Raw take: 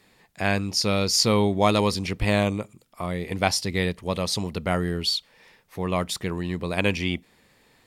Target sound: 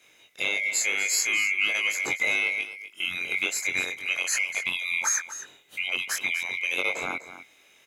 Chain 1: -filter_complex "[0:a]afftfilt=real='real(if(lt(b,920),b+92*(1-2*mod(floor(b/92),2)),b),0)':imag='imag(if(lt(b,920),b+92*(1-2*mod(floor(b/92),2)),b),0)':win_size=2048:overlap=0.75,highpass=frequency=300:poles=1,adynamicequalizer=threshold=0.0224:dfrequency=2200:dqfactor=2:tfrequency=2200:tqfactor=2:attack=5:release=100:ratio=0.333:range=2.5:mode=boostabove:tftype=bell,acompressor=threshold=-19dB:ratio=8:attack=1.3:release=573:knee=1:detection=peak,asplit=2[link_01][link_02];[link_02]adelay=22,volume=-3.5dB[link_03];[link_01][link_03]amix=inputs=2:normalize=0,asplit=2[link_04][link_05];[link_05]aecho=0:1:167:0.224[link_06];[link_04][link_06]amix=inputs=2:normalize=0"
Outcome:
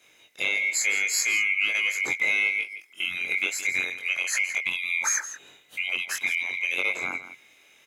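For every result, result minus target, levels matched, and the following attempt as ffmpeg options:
echo 82 ms early; 1,000 Hz band −3.0 dB
-filter_complex "[0:a]afftfilt=real='real(if(lt(b,920),b+92*(1-2*mod(floor(b/92),2)),b),0)':imag='imag(if(lt(b,920),b+92*(1-2*mod(floor(b/92),2)),b),0)':win_size=2048:overlap=0.75,highpass=frequency=300:poles=1,adynamicequalizer=threshold=0.0224:dfrequency=2200:dqfactor=2:tfrequency=2200:tqfactor=2:attack=5:release=100:ratio=0.333:range=2.5:mode=boostabove:tftype=bell,acompressor=threshold=-19dB:ratio=8:attack=1.3:release=573:knee=1:detection=peak,asplit=2[link_01][link_02];[link_02]adelay=22,volume=-3.5dB[link_03];[link_01][link_03]amix=inputs=2:normalize=0,asplit=2[link_04][link_05];[link_05]aecho=0:1:249:0.224[link_06];[link_04][link_06]amix=inputs=2:normalize=0"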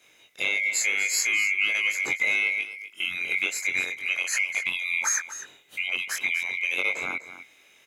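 1,000 Hz band −3.0 dB
-filter_complex "[0:a]afftfilt=real='real(if(lt(b,920),b+92*(1-2*mod(floor(b/92),2)),b),0)':imag='imag(if(lt(b,920),b+92*(1-2*mod(floor(b/92),2)),b),0)':win_size=2048:overlap=0.75,highpass=frequency=300:poles=1,adynamicequalizer=threshold=0.0224:dfrequency=730:dqfactor=2:tfrequency=730:tqfactor=2:attack=5:release=100:ratio=0.333:range=2.5:mode=boostabove:tftype=bell,acompressor=threshold=-19dB:ratio=8:attack=1.3:release=573:knee=1:detection=peak,asplit=2[link_01][link_02];[link_02]adelay=22,volume=-3.5dB[link_03];[link_01][link_03]amix=inputs=2:normalize=0,asplit=2[link_04][link_05];[link_05]aecho=0:1:249:0.224[link_06];[link_04][link_06]amix=inputs=2:normalize=0"

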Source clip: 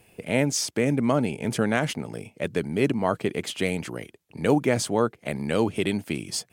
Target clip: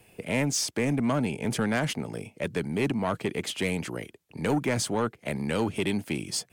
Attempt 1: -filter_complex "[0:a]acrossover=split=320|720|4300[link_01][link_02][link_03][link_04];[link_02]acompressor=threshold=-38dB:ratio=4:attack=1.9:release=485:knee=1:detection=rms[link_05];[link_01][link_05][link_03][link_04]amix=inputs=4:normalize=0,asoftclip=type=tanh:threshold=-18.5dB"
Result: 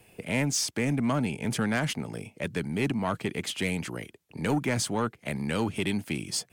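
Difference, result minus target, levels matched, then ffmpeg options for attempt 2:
downward compressor: peak gain reduction +8 dB
-filter_complex "[0:a]acrossover=split=320|720|4300[link_01][link_02][link_03][link_04];[link_02]acompressor=threshold=-27dB:ratio=4:attack=1.9:release=485:knee=1:detection=rms[link_05];[link_01][link_05][link_03][link_04]amix=inputs=4:normalize=0,asoftclip=type=tanh:threshold=-18.5dB"

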